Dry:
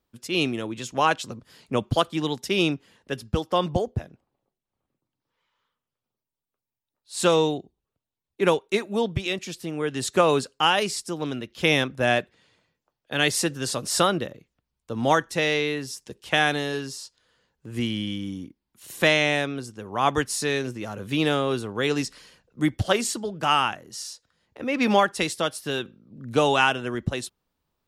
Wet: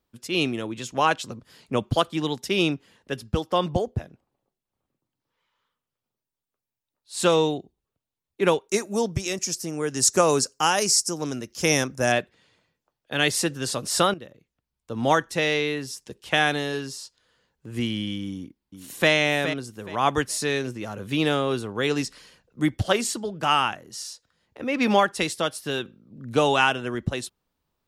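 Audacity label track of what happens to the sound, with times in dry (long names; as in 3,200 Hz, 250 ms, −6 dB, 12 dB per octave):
8.690000	12.120000	high shelf with overshoot 4,500 Hz +8.5 dB, Q 3
14.140000	15.050000	fade in, from −14.5 dB
18.300000	19.110000	delay throw 420 ms, feedback 25%, level −9.5 dB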